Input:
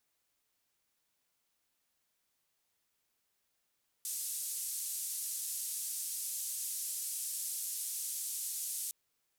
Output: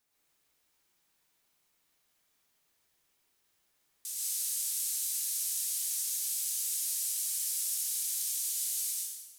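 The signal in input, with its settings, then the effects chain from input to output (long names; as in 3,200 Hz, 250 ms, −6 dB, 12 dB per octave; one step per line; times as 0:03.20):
band-limited noise 7,900–11,000 Hz, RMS −39 dBFS 4.86 s
dense smooth reverb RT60 1.1 s, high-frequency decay 0.9×, pre-delay 95 ms, DRR −4.5 dB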